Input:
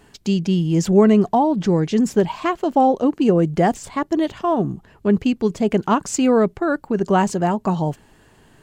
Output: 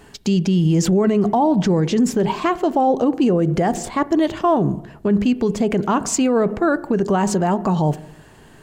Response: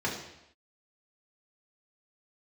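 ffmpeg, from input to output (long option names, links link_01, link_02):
-filter_complex "[0:a]asplit=2[link_01][link_02];[1:a]atrim=start_sample=2205,lowpass=2600[link_03];[link_02][link_03]afir=irnorm=-1:irlink=0,volume=-23.5dB[link_04];[link_01][link_04]amix=inputs=2:normalize=0,alimiter=level_in=13.5dB:limit=-1dB:release=50:level=0:latency=1,volume=-8.5dB"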